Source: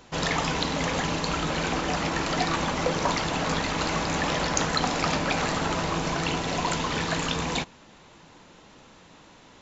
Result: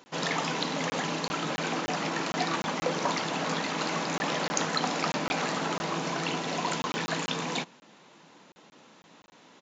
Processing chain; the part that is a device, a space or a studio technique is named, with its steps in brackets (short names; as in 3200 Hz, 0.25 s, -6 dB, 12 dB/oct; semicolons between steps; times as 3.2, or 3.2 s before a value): call with lost packets (HPF 160 Hz 24 dB/oct; downsampling 16000 Hz; packet loss packets of 20 ms random); gain -3 dB